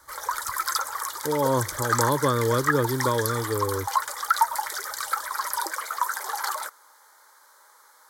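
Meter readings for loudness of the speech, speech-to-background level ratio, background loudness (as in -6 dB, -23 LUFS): -26.0 LUFS, 2.0 dB, -28.0 LUFS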